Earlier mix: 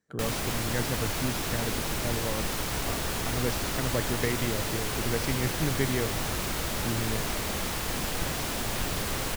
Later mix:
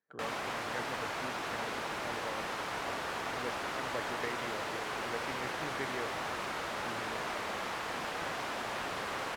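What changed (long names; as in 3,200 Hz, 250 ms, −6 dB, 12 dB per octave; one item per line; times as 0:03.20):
speech −4.5 dB
master: add resonant band-pass 1,100 Hz, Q 0.74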